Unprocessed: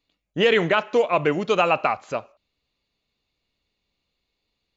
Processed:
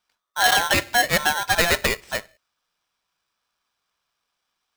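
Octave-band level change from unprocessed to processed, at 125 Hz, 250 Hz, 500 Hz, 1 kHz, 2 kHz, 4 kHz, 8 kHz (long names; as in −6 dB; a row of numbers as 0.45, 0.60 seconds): −1.0 dB, −5.5 dB, −7.5 dB, +1.0 dB, +6.0 dB, +7.0 dB, can't be measured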